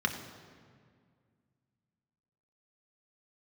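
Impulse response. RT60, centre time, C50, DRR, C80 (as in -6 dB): 2.0 s, 26 ms, 8.0 dB, 3.0 dB, 9.5 dB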